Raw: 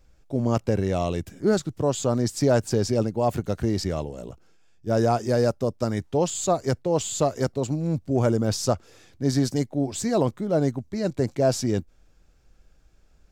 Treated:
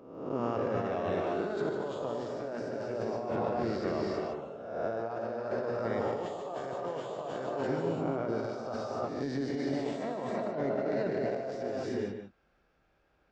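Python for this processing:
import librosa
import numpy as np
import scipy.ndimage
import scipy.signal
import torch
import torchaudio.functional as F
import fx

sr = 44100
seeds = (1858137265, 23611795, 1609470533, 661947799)

y = fx.spec_swells(x, sr, rise_s=0.91)
y = fx.highpass(y, sr, hz=1100.0, slope=6)
y = fx.rev_gated(y, sr, seeds[0], gate_ms=370, shape='rising', drr_db=1.0)
y = fx.over_compress(y, sr, threshold_db=-31.0, ratio=-1.0)
y = fx.spacing_loss(y, sr, db_at_10k=43)
y = y + 10.0 ** (-8.0 / 20.0) * np.pad(y, (int(150 * sr / 1000.0), 0))[:len(y)]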